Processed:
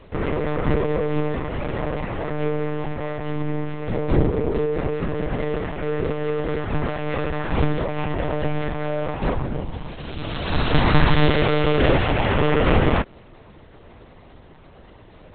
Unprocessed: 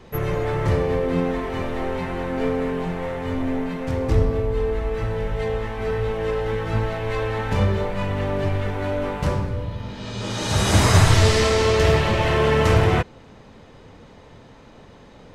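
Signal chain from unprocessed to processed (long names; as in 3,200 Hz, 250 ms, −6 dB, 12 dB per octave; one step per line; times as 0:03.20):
one-pitch LPC vocoder at 8 kHz 150 Hz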